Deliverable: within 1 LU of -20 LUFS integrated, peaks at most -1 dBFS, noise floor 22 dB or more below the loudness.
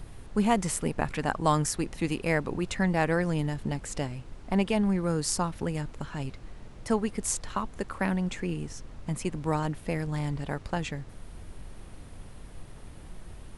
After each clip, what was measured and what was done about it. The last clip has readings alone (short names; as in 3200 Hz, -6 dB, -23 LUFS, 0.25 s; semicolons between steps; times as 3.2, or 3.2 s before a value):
noise floor -47 dBFS; noise floor target -52 dBFS; loudness -30.0 LUFS; peak -9.5 dBFS; loudness target -20.0 LUFS
-> noise print and reduce 6 dB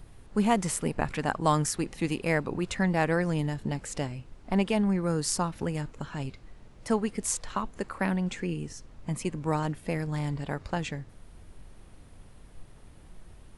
noise floor -52 dBFS; loudness -30.0 LUFS; peak -9.0 dBFS; loudness target -20.0 LUFS
-> gain +10 dB; limiter -1 dBFS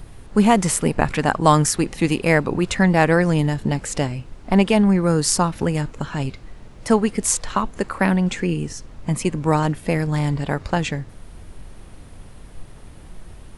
loudness -20.0 LUFS; peak -1.0 dBFS; noise floor -42 dBFS